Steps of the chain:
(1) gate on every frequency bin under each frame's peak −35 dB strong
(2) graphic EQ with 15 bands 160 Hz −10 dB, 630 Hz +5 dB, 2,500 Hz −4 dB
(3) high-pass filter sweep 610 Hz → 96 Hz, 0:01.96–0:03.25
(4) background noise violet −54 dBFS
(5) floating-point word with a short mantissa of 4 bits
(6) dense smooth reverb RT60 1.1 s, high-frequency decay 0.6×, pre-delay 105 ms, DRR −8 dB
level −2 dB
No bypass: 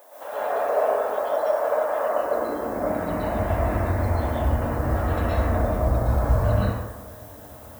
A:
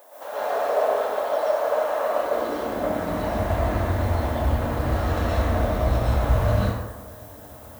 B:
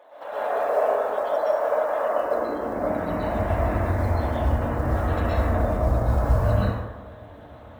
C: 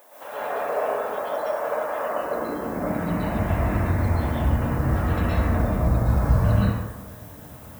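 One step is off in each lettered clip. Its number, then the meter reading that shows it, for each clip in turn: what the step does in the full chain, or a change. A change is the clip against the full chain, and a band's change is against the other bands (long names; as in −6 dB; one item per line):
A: 1, 4 kHz band +6.5 dB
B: 4, change in momentary loudness spread −2 LU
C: 2, change in momentary loudness spread +2 LU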